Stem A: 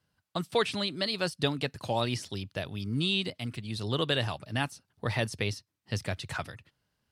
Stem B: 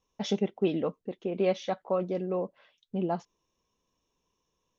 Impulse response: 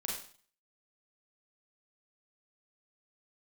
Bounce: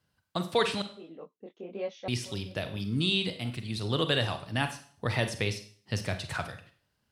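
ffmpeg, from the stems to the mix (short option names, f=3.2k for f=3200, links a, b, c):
-filter_complex "[0:a]volume=-2dB,asplit=3[a][b][c];[a]atrim=end=0.82,asetpts=PTS-STARTPTS,afade=t=out:st=0.816:d=0.004:c=hsin[d];[b]atrim=start=0.82:end=2.08,asetpts=PTS-STARTPTS,volume=0[e];[c]atrim=start=2.08,asetpts=PTS-STARTPTS,afade=t=in:d=0.004:c=hsin[f];[d][e][f]concat=n=3:v=0:a=1,asplit=3[g][h][i];[h]volume=-5.5dB[j];[1:a]highpass=200,flanger=delay=18:depth=7.1:speed=1.3,adelay=350,volume=-6dB[k];[i]apad=whole_len=226603[l];[k][l]sidechaincompress=threshold=-51dB:ratio=4:attack=31:release=441[m];[2:a]atrim=start_sample=2205[n];[j][n]afir=irnorm=-1:irlink=0[o];[g][m][o]amix=inputs=3:normalize=0"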